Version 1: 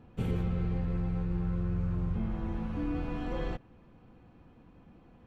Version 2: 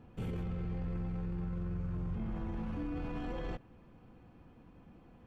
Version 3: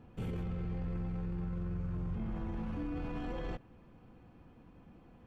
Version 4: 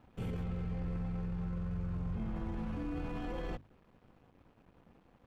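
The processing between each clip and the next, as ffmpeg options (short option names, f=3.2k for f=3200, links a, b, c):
-af "bandreject=f=3.9k:w=20,alimiter=level_in=6.5dB:limit=-24dB:level=0:latency=1:release=11,volume=-6.5dB,volume=-1dB"
-af anull
-af "aeval=exprs='sgn(val(0))*max(abs(val(0))-0.00112,0)':c=same,bandreject=f=50:t=h:w=6,bandreject=f=100:t=h:w=6,bandreject=f=150:t=h:w=6,bandreject=f=200:t=h:w=6,bandreject=f=250:t=h:w=6,bandreject=f=300:t=h:w=6,bandreject=f=350:t=h:w=6,volume=1dB"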